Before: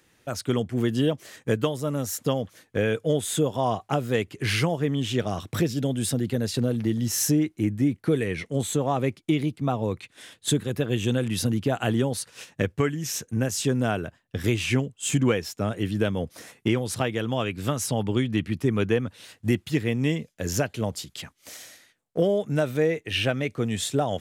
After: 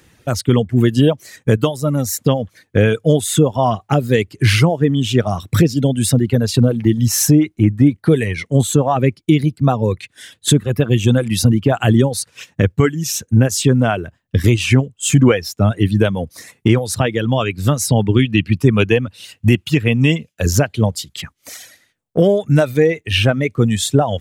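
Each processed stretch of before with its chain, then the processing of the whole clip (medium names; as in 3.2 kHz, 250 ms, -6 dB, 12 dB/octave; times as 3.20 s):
18.19–20.46 s: high-pass 54 Hz + peaking EQ 2.7 kHz +9.5 dB 0.43 oct
whole clip: reverb removal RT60 1.5 s; peaking EQ 67 Hz +8.5 dB 3 oct; loudness maximiser +10.5 dB; trim -1 dB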